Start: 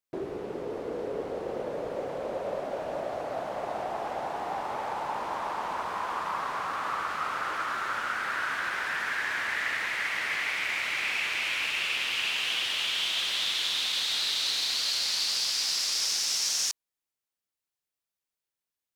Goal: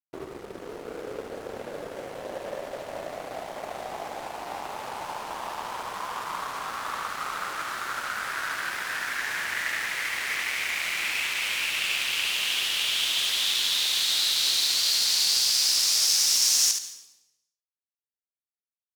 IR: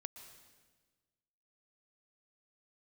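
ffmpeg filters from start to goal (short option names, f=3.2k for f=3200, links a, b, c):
-filter_complex "[0:a]crystalizer=i=2:c=0,aeval=exprs='sgn(val(0))*max(abs(val(0))-0.0119,0)':c=same,asplit=2[a][b];[1:a]atrim=start_sample=2205,asetrate=70560,aresample=44100,adelay=74[c];[b][c]afir=irnorm=-1:irlink=0,volume=3dB[d];[a][d]amix=inputs=2:normalize=0"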